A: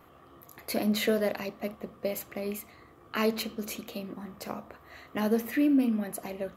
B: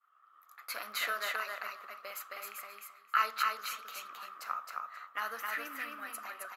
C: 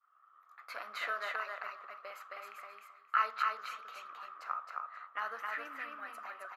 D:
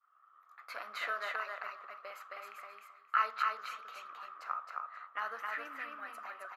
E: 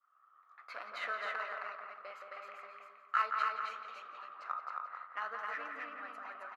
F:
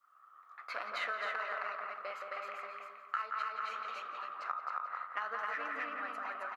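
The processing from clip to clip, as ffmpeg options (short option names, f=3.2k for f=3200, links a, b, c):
-filter_complex "[0:a]agate=range=-33dB:threshold=-45dB:ratio=3:detection=peak,highpass=f=1.3k:t=q:w=8.2,asplit=2[a][b];[b]aecho=0:1:266|532|798:0.708|0.113|0.0181[c];[a][c]amix=inputs=2:normalize=0,volume=-5.5dB"
-af "bandpass=f=880:t=q:w=0.58:csg=0"
-af anull
-filter_complex "[0:a]adynamicsmooth=sensitivity=6:basefreq=5.5k,asplit=2[a][b];[b]adelay=171,lowpass=f=1.8k:p=1,volume=-4dB,asplit=2[c][d];[d]adelay=171,lowpass=f=1.8k:p=1,volume=0.38,asplit=2[e][f];[f]adelay=171,lowpass=f=1.8k:p=1,volume=0.38,asplit=2[g][h];[h]adelay=171,lowpass=f=1.8k:p=1,volume=0.38,asplit=2[i][j];[j]adelay=171,lowpass=f=1.8k:p=1,volume=0.38[k];[a][c][e][g][i][k]amix=inputs=6:normalize=0,volume=-1.5dB"
-af "acompressor=threshold=-39dB:ratio=12,volume=6dB"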